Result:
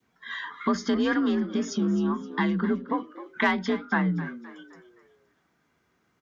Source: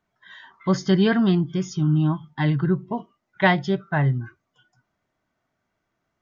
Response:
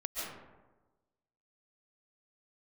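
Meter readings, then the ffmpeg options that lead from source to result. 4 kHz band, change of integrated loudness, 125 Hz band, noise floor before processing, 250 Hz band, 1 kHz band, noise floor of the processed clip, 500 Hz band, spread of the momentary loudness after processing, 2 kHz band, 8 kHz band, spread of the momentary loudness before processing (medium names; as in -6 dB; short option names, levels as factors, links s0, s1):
-4.0 dB, -4.5 dB, -12.5 dB, -78 dBFS, -3.0 dB, -2.0 dB, -71 dBFS, -4.5 dB, 12 LU, -1.5 dB, no reading, 11 LU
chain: -filter_complex "[0:a]equalizer=f=660:t=o:w=0.37:g=-7.5,asoftclip=type=tanh:threshold=0.335,acompressor=threshold=0.02:ratio=3,adynamicequalizer=threshold=0.00178:dfrequency=1200:dqfactor=1.4:tfrequency=1200:tqfactor=1.4:attack=5:release=100:ratio=0.375:range=3.5:mode=boostabove:tftype=bell,afreqshift=48,highpass=44,asplit=5[s0][s1][s2][s3][s4];[s1]adelay=260,afreqshift=61,volume=0.168[s5];[s2]adelay=520,afreqshift=122,volume=0.0708[s6];[s3]adelay=780,afreqshift=183,volume=0.0295[s7];[s4]adelay=1040,afreqshift=244,volume=0.0124[s8];[s0][s5][s6][s7][s8]amix=inputs=5:normalize=0,volume=2.24"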